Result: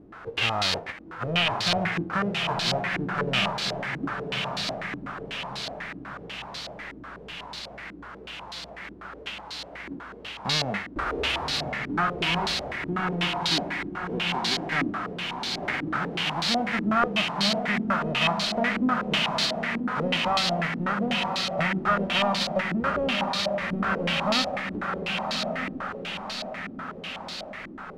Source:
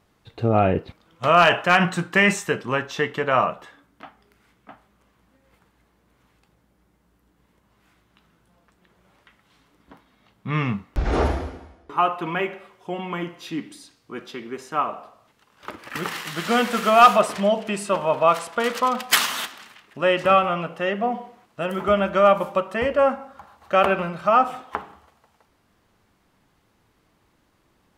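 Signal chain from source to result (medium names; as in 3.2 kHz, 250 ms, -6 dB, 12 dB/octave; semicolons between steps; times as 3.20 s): formants flattened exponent 0.1; compression 3:1, threshold -35 dBFS, peak gain reduction 21 dB; power-law waveshaper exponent 0.5; echo that smears into a reverb 1150 ms, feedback 50%, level -4 dB; step-sequenced low-pass 8.1 Hz 310–4200 Hz; trim -3 dB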